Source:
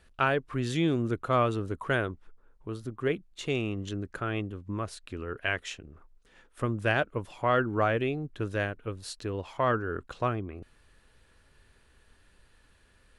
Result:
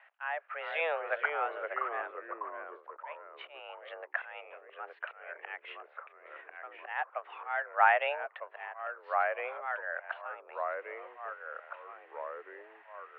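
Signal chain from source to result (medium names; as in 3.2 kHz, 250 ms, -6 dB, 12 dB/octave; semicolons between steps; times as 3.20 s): slow attack 643 ms; mistuned SSB +160 Hz 550–2400 Hz; ever faster or slower copies 377 ms, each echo -2 st, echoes 3, each echo -6 dB; trim +8 dB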